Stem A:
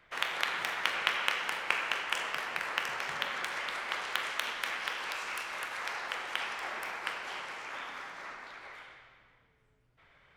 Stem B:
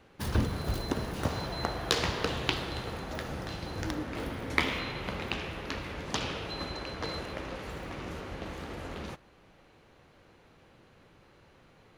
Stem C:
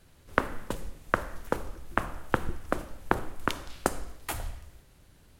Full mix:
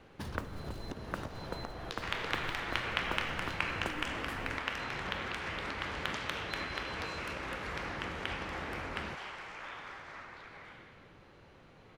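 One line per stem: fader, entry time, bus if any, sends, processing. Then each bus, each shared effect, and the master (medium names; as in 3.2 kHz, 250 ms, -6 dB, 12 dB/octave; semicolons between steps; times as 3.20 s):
-3.5 dB, 1.90 s, no send, none
+1.5 dB, 0.00 s, no send, compression 10:1, threshold -40 dBFS, peak gain reduction 20 dB
-13.5 dB, 0.00 s, no send, modulation noise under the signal 16 dB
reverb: none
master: treble shelf 8.4 kHz -11.5 dB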